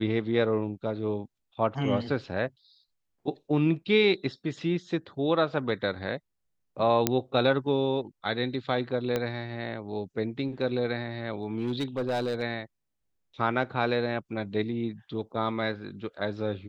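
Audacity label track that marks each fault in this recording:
7.070000	7.070000	click −6 dBFS
9.160000	9.160000	click −14 dBFS
11.430000	12.430000	clipping −24 dBFS

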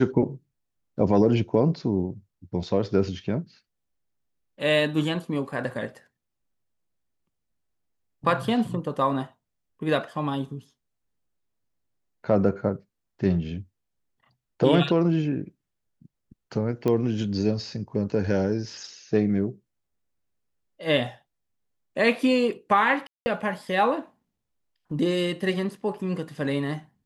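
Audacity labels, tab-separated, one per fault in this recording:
16.880000	16.880000	click −14 dBFS
23.070000	23.260000	drop-out 190 ms

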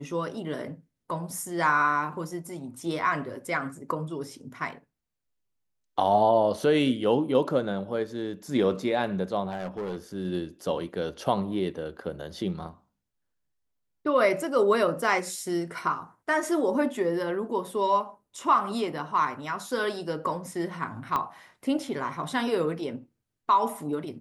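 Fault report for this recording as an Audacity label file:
9.500000	9.970000	clipping −28.5 dBFS
21.160000	21.160000	click −14 dBFS

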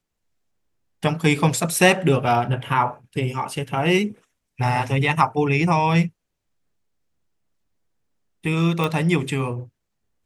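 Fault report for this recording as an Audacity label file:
8.840000	8.840000	click

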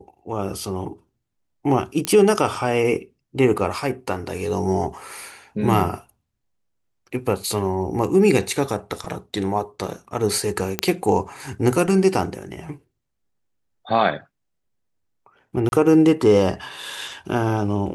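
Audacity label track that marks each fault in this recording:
2.050000	2.050000	click −6 dBFS
10.790000	10.790000	click −4 dBFS
15.690000	15.720000	drop-out 31 ms

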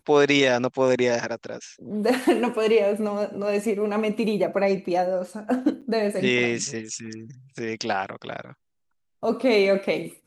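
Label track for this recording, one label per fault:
5.810000	5.820000	drop-out 7.3 ms

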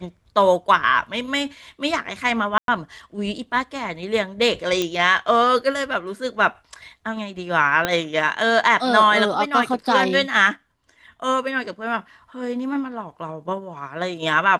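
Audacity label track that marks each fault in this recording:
2.580000	2.680000	drop-out 102 ms
4.820000	4.820000	click −9 dBFS
7.850000	7.850000	click −5 dBFS

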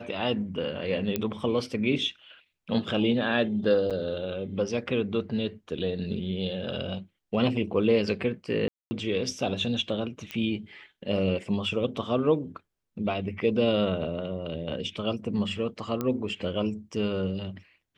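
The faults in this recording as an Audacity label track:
1.160000	1.160000	click −12 dBFS
3.900000	3.910000	drop-out 7.1 ms
8.680000	8.910000	drop-out 230 ms
10.310000	10.310000	click −19 dBFS
16.010000	16.010000	click −16 dBFS

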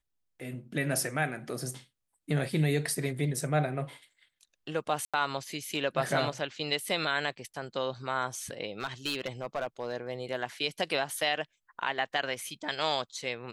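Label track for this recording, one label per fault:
5.050000	5.140000	drop-out 86 ms
8.800000	9.940000	clipping −26.5 dBFS

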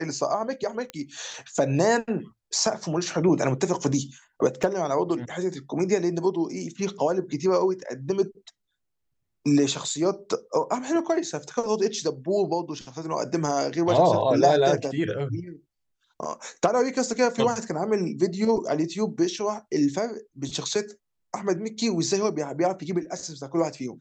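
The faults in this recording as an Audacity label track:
0.900000	0.900000	click −18 dBFS
4.630000	4.640000	drop-out 5.1 ms

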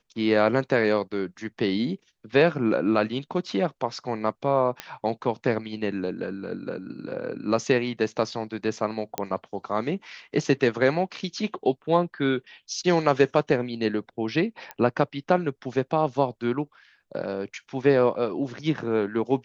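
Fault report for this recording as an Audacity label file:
4.800000	4.800000	click −14 dBFS
9.180000	9.180000	click −10 dBFS
14.710000	14.710000	click −18 dBFS

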